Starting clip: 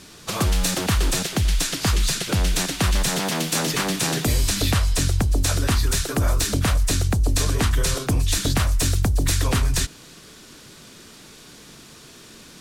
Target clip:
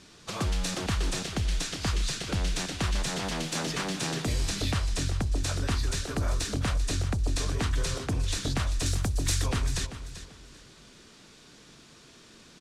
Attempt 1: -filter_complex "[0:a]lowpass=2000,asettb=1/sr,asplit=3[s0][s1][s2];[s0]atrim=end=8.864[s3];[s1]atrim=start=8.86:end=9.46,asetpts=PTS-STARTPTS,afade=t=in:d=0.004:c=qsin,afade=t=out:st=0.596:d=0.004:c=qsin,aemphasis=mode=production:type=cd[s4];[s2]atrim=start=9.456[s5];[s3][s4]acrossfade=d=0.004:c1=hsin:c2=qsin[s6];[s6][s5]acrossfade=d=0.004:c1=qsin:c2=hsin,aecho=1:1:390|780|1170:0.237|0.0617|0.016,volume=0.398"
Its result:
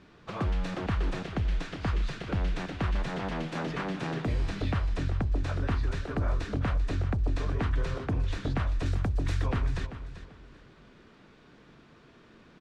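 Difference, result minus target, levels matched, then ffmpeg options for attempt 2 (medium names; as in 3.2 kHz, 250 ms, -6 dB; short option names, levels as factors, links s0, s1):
8 kHz band -19.0 dB
-filter_complex "[0:a]lowpass=7700,asettb=1/sr,asplit=3[s0][s1][s2];[s0]atrim=end=8.864[s3];[s1]atrim=start=8.86:end=9.46,asetpts=PTS-STARTPTS,afade=t=in:d=0.004:c=qsin,afade=t=out:st=0.596:d=0.004:c=qsin,aemphasis=mode=production:type=cd[s4];[s2]atrim=start=9.456[s5];[s3][s4]acrossfade=d=0.004:c1=hsin:c2=qsin[s6];[s6][s5]acrossfade=d=0.004:c1=qsin:c2=hsin,aecho=1:1:390|780|1170:0.237|0.0617|0.016,volume=0.398"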